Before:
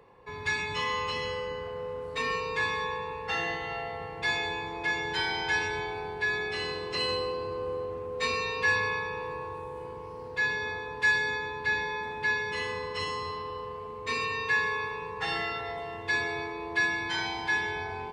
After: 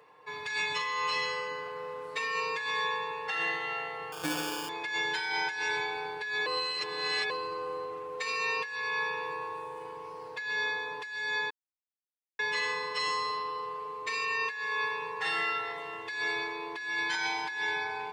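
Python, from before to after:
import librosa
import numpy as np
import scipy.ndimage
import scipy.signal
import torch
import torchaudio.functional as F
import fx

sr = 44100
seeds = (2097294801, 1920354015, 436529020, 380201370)

y = fx.sample_hold(x, sr, seeds[0], rate_hz=2000.0, jitter_pct=0, at=(4.12, 4.69))
y = fx.edit(y, sr, fx.reverse_span(start_s=6.46, length_s=0.84),
    fx.silence(start_s=11.5, length_s=0.89), tone=tone)
y = fx.highpass(y, sr, hz=850.0, slope=6)
y = y + 0.61 * np.pad(y, (int(6.6 * sr / 1000.0), 0))[:len(y)]
y = fx.over_compress(y, sr, threshold_db=-32.0, ratio=-1.0)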